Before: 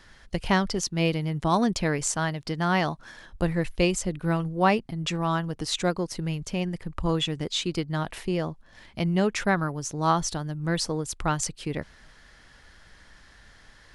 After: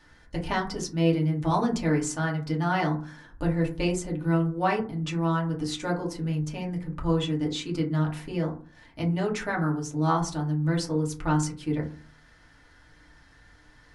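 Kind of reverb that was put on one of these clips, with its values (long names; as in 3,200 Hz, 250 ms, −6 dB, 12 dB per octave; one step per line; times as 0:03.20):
feedback delay network reverb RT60 0.39 s, low-frequency decay 1.5×, high-frequency decay 0.35×, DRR −3 dB
level −7.5 dB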